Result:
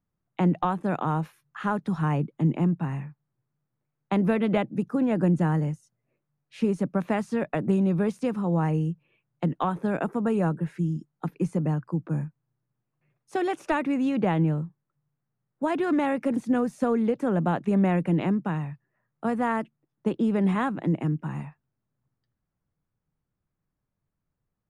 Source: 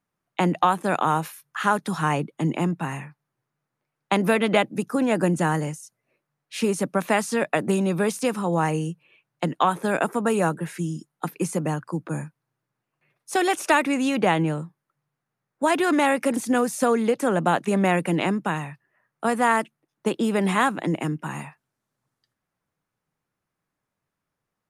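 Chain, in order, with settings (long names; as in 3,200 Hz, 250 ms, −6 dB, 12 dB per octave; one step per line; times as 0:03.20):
RIAA equalisation playback
level −7.5 dB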